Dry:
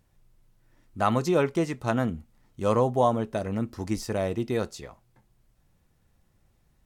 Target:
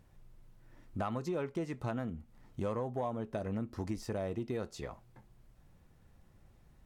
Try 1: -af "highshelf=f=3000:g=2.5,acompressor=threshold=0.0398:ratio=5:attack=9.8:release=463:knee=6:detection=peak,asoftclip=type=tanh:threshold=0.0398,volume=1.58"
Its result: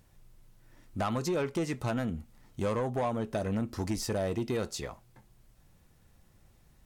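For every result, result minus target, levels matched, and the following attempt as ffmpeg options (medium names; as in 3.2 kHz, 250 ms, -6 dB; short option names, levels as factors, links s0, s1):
8 kHz band +8.0 dB; compression: peak gain reduction -6.5 dB
-af "highshelf=f=3000:g=-7,acompressor=threshold=0.0398:ratio=5:attack=9.8:release=463:knee=6:detection=peak,asoftclip=type=tanh:threshold=0.0398,volume=1.58"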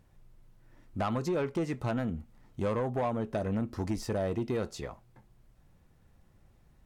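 compression: peak gain reduction -7 dB
-af "highshelf=f=3000:g=-7,acompressor=threshold=0.0141:ratio=5:attack=9.8:release=463:knee=6:detection=peak,asoftclip=type=tanh:threshold=0.0398,volume=1.58"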